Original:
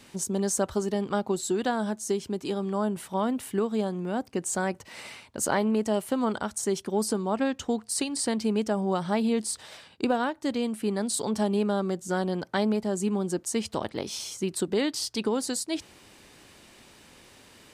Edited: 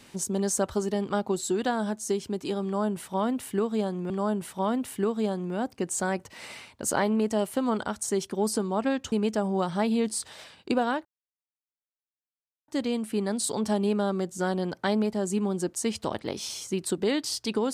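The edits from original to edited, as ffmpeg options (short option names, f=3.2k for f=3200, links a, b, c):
-filter_complex "[0:a]asplit=4[a][b][c][d];[a]atrim=end=4.102[e];[b]atrim=start=2.648:end=7.672[f];[c]atrim=start=8.448:end=10.38,asetpts=PTS-STARTPTS,afade=t=out:st=1.928:d=0.004:c=hsin,apad=pad_dur=1.63[g];[d]atrim=start=10.38,asetpts=PTS-STARTPTS,afade=t=in:d=0.004:c=hsin[h];[e][f]acrossfade=d=0.004:c1=hsin:c2=hsin[i];[g][h]concat=n=2:v=0:a=1[j];[i][j]acrossfade=d=0.004:c1=hsin:c2=hsin"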